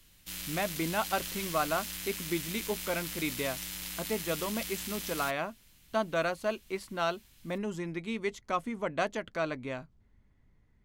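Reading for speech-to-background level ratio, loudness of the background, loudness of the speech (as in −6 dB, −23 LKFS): 3.0 dB, −37.5 LKFS, −34.5 LKFS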